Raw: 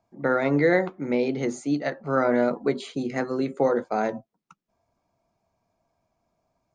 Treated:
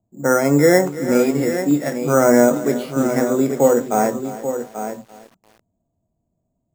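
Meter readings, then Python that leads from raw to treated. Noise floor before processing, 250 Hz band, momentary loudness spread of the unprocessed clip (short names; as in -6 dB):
-79 dBFS, +8.5 dB, 8 LU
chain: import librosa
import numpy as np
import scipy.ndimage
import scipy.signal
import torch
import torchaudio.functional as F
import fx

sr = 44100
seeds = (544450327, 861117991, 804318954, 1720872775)

p1 = fx.freq_compress(x, sr, knee_hz=2500.0, ratio=1.5)
p2 = scipy.signal.sosfilt(scipy.signal.butter(4, 3700.0, 'lowpass', fs=sr, output='sos'), p1)
p3 = fx.env_lowpass(p2, sr, base_hz=320.0, full_db=-21.0)
p4 = fx.rider(p3, sr, range_db=10, speed_s=2.0)
p5 = p4 + fx.echo_single(p4, sr, ms=836, db=-9.5, dry=0)
p6 = np.repeat(p5[::6], 6)[:len(p5)]
p7 = fx.hpss(p6, sr, part='harmonic', gain_db=8)
y = fx.echo_crushed(p7, sr, ms=335, feedback_pct=35, bits=6, wet_db=-15.0)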